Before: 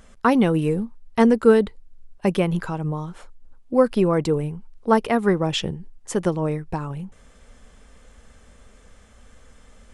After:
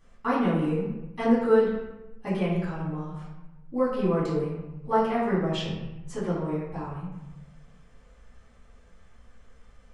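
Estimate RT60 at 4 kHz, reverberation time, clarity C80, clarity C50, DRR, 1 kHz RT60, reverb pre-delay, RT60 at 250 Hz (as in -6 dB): 0.70 s, 1.0 s, 3.5 dB, 1.0 dB, -12.0 dB, 1.0 s, 3 ms, 1.2 s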